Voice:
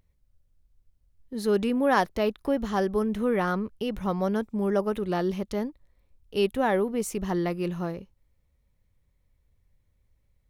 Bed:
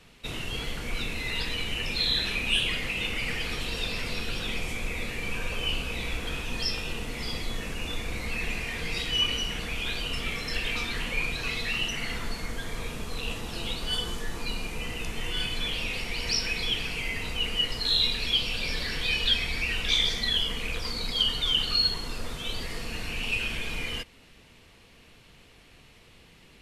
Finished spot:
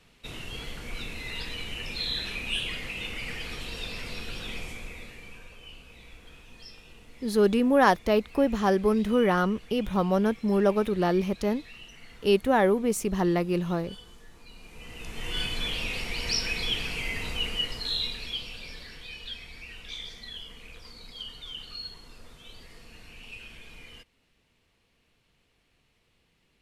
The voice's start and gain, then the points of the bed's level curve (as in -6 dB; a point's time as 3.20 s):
5.90 s, +2.5 dB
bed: 4.61 s -5 dB
5.59 s -18 dB
14.49 s -18 dB
15.35 s -0.5 dB
17.35 s -0.5 dB
19.09 s -15 dB